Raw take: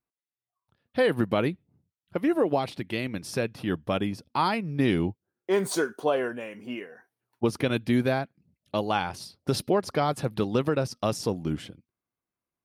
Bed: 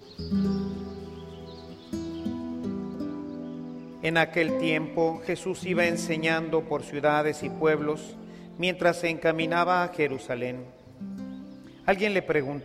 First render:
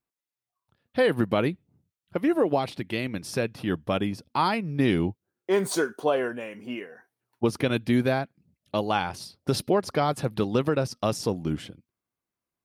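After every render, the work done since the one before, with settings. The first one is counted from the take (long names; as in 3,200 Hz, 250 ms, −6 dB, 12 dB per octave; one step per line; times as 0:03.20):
level +1 dB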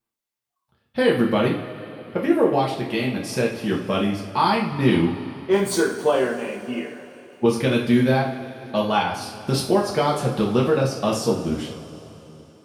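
coupled-rooms reverb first 0.42 s, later 3.7 s, from −18 dB, DRR −3 dB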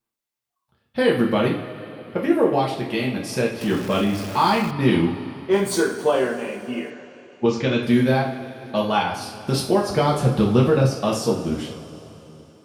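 0:03.61–0:04.71: converter with a step at zero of −29.5 dBFS
0:06.90–0:07.83: elliptic low-pass filter 7,300 Hz
0:09.90–0:10.95: low-shelf EQ 150 Hz +11 dB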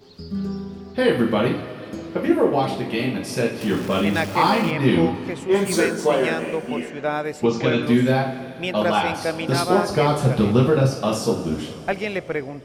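mix in bed −1 dB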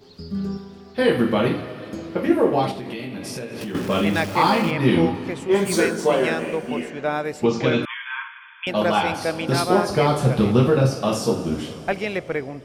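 0:00.57–0:00.99: low-shelf EQ 430 Hz −8.5 dB
0:02.71–0:03.75: downward compressor 10 to 1, threshold −27 dBFS
0:07.85–0:08.67: linear-phase brick-wall band-pass 890–3,500 Hz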